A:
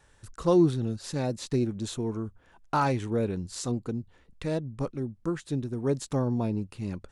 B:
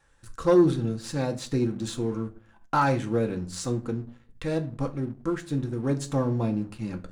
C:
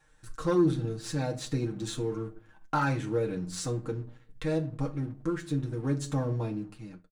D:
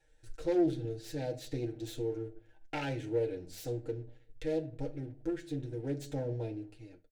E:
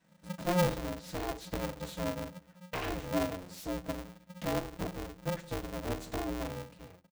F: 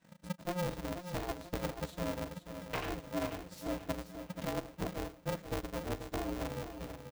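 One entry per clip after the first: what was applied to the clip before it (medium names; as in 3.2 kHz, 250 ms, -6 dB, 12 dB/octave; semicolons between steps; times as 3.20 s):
on a send at -4 dB: reverberation RT60 0.40 s, pre-delay 4 ms; on the sum: waveshaping leveller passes 1; peaking EQ 1.5 kHz +3.5 dB 0.7 oct; trim -3.5 dB
fade out at the end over 0.76 s; comb 6.5 ms, depth 72%; in parallel at -0.5 dB: compression, threshold -30 dBFS, peak gain reduction 16.5 dB; on the sum: trim -8 dB
self-modulated delay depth 0.2 ms; treble shelf 5.3 kHz -9.5 dB; static phaser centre 470 Hz, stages 4; trim -1.5 dB
polarity switched at an audio rate 180 Hz
transient shaper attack +10 dB, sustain -8 dB; reverse; compression 6:1, threshold -36 dBFS, peak gain reduction 16.5 dB; reverse; feedback delay 485 ms, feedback 41%, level -9 dB; trim +1.5 dB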